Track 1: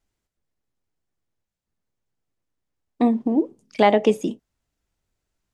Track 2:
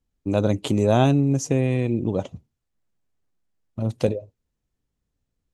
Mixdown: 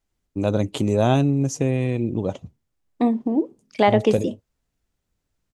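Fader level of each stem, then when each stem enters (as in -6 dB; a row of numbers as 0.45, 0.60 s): -1.0, -0.5 dB; 0.00, 0.10 s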